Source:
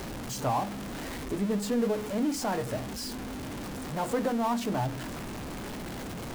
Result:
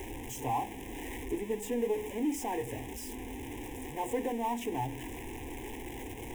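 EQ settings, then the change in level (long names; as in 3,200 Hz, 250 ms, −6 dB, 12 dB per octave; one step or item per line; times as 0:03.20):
Butterworth band-reject 1,300 Hz, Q 1.6
phaser with its sweep stopped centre 910 Hz, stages 8
0.0 dB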